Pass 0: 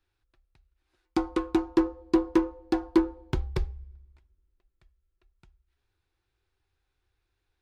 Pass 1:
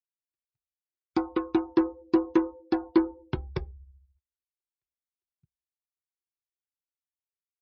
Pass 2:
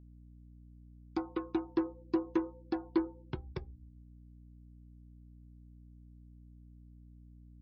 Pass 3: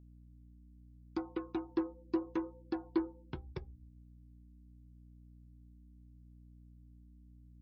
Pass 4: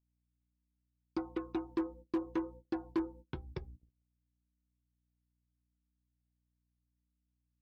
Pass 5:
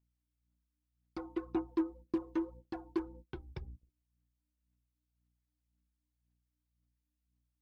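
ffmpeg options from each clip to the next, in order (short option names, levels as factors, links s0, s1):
-af "highpass=86,afftdn=nr=34:nf=-44"
-af "aeval=exprs='val(0)+0.00562*(sin(2*PI*60*n/s)+sin(2*PI*2*60*n/s)/2+sin(2*PI*3*60*n/s)/3+sin(2*PI*4*60*n/s)/4+sin(2*PI*5*60*n/s)/5)':c=same,volume=0.376"
-af "flanger=delay=0.3:depth=3.9:regen=-74:speed=0.77:shape=sinusoidal,volume=1.19"
-af "agate=range=0.0501:threshold=0.00251:ratio=16:detection=peak,asoftclip=type=hard:threshold=0.0398,volume=1.12"
-af "aphaser=in_gain=1:out_gain=1:delay=3.3:decay=0.52:speed=1.9:type=sinusoidal,volume=0.668"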